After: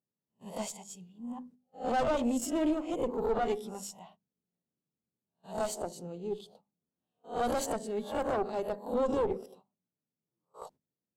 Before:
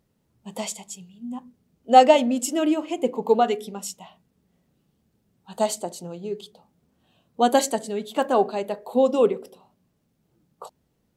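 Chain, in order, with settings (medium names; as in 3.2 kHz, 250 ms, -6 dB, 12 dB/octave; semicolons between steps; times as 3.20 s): reverse spectral sustain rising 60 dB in 0.33 s; treble shelf 6.6 kHz -8 dB; gate -49 dBFS, range -18 dB; high-pass 120 Hz; hum notches 50/100/150/200/250 Hz; one-sided clip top -22.5 dBFS; valve stage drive 14 dB, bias 0.8; peaking EQ 2.4 kHz -7 dB 2.2 oct; peak limiter -20.5 dBFS, peak gain reduction 9.5 dB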